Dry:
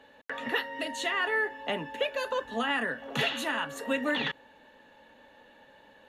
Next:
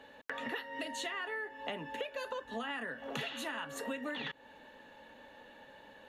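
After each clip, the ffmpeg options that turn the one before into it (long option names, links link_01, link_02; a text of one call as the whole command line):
ffmpeg -i in.wav -af "acompressor=threshold=-38dB:ratio=6,volume=1dB" out.wav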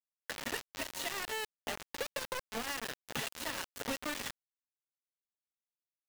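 ffmpeg -i in.wav -af "asoftclip=type=tanh:threshold=-30.5dB,acrusher=bits=5:mix=0:aa=0.000001,volume=1dB" out.wav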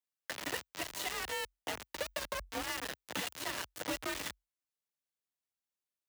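ffmpeg -i in.wav -af "afreqshift=45" out.wav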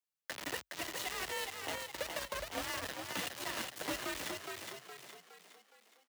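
ffmpeg -i in.wav -filter_complex "[0:a]asplit=7[link_01][link_02][link_03][link_04][link_05][link_06][link_07];[link_02]adelay=415,afreqshift=41,volume=-4.5dB[link_08];[link_03]adelay=830,afreqshift=82,volume=-11.2dB[link_09];[link_04]adelay=1245,afreqshift=123,volume=-18dB[link_10];[link_05]adelay=1660,afreqshift=164,volume=-24.7dB[link_11];[link_06]adelay=2075,afreqshift=205,volume=-31.5dB[link_12];[link_07]adelay=2490,afreqshift=246,volume=-38.2dB[link_13];[link_01][link_08][link_09][link_10][link_11][link_12][link_13]amix=inputs=7:normalize=0,volume=-2dB" out.wav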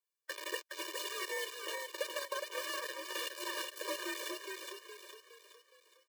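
ffmpeg -i in.wav -af "afftfilt=real='re*eq(mod(floor(b*sr/1024/310),2),1)':imag='im*eq(mod(floor(b*sr/1024/310),2),1)':win_size=1024:overlap=0.75,volume=3dB" out.wav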